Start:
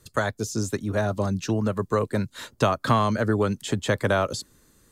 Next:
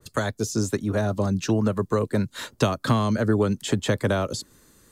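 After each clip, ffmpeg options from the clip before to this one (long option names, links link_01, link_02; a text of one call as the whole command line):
ffmpeg -i in.wav -filter_complex "[0:a]lowshelf=frequency=130:gain=-4,acrossover=split=410|3000[link_01][link_02][link_03];[link_02]acompressor=threshold=-33dB:ratio=2.5[link_04];[link_01][link_04][link_03]amix=inputs=3:normalize=0,adynamicequalizer=threshold=0.00708:dfrequency=1900:dqfactor=0.7:tfrequency=1900:tqfactor=0.7:attack=5:release=100:ratio=0.375:range=2:mode=cutabove:tftype=highshelf,volume=4dB" out.wav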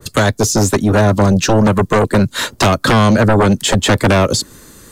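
ffmpeg -i in.wav -af "aeval=exprs='0.447*sin(PI/2*3.98*val(0)/0.447)':channel_layout=same" out.wav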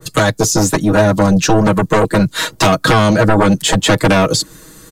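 ffmpeg -i in.wav -af "aecho=1:1:6.3:0.87,volume=-1.5dB" out.wav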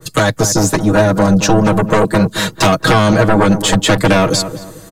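ffmpeg -i in.wav -filter_complex "[0:a]asplit=2[link_01][link_02];[link_02]adelay=223,lowpass=frequency=1300:poles=1,volume=-10dB,asplit=2[link_03][link_04];[link_04]adelay=223,lowpass=frequency=1300:poles=1,volume=0.33,asplit=2[link_05][link_06];[link_06]adelay=223,lowpass=frequency=1300:poles=1,volume=0.33,asplit=2[link_07][link_08];[link_08]adelay=223,lowpass=frequency=1300:poles=1,volume=0.33[link_09];[link_01][link_03][link_05][link_07][link_09]amix=inputs=5:normalize=0" out.wav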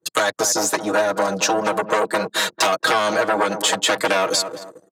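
ffmpeg -i in.wav -af "anlmdn=25.1,highpass=510,acompressor=threshold=-18dB:ratio=2" out.wav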